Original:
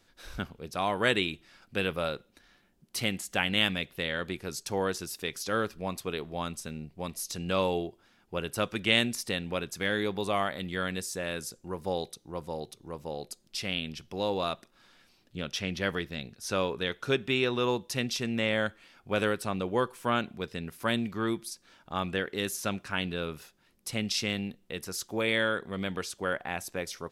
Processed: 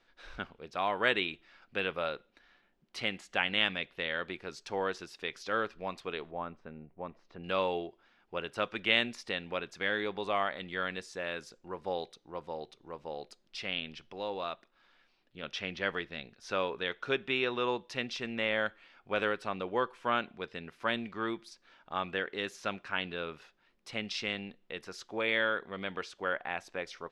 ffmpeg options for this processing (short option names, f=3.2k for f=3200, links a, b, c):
-filter_complex "[0:a]asettb=1/sr,asplit=3[a][b][c];[a]atrim=end=6.314[d];[b]atrim=start=6.31:end=7.44,asetpts=PTS-STARTPTS,afade=t=in:d=0.004:c=qsin,afade=t=out:st=1.126:d=0.004:c=qsin,lowpass=1.3k[e];[c]atrim=start=7.436[f];[d][e]acrossfade=d=0.004:c1=hsin:c2=qsin[g];[g][f]acrossfade=d=0.004:c1=qsin:c2=hsin,asplit=3[h][i][j];[h]atrim=end=14.132[k];[i]atrim=start=14.128:end=15.432,asetpts=PTS-STARTPTS,volume=-3.5dB[l];[j]atrim=start=15.428[m];[k][l]acrossfade=d=0.004:c1=hsin:c2=hsin[n];[n][m]acrossfade=d=0.004:c1=hsin:c2=hsin,lowpass=3.2k,equalizer=f=94:w=0.35:g=-12.5"